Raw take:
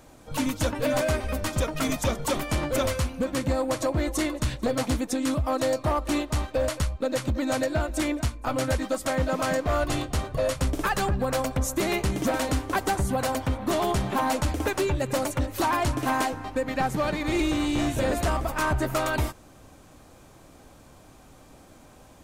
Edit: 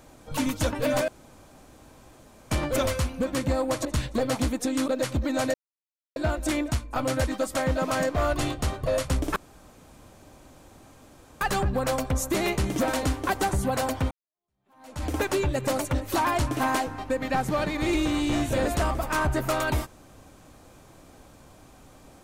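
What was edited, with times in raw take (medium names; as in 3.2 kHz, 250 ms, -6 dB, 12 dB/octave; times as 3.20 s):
1.08–2.51 s: room tone
3.85–4.33 s: delete
5.36–7.01 s: delete
7.67 s: insert silence 0.62 s
10.87 s: insert room tone 2.05 s
13.57–14.53 s: fade in exponential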